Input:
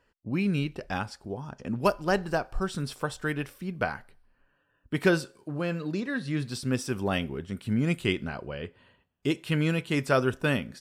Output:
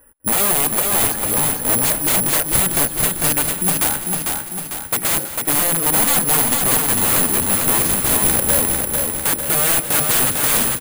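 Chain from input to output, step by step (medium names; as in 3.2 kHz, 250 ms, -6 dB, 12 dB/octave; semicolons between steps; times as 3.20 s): 7.78–8.60 s: square wave that keeps the level; low-pass 1.7 kHz 12 dB/octave; comb 3.6 ms, depth 39%; 0.83–1.49 s: transient shaper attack -9 dB, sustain +9 dB; in parallel at -0.5 dB: compression 16:1, threshold -36 dBFS, peak gain reduction 20 dB; on the sum: integer overflow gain 24 dB; on a send: feedback delay 201 ms, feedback 52%, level -13.5 dB; on the sum: careless resampling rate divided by 4×, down filtered, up zero stuff; bit-crushed delay 449 ms, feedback 55%, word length 9-bit, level -3.5 dB; trim +6.5 dB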